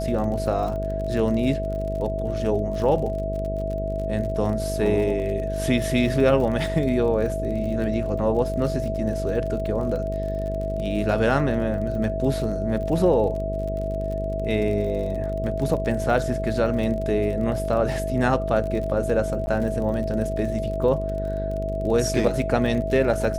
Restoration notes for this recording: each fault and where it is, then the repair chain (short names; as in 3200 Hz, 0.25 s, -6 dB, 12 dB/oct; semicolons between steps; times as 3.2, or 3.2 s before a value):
buzz 50 Hz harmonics 13 -29 dBFS
crackle 41/s -31 dBFS
tone 650 Hz -28 dBFS
19.46–19.47 gap 10 ms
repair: de-click; de-hum 50 Hz, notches 13; notch 650 Hz, Q 30; interpolate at 19.46, 10 ms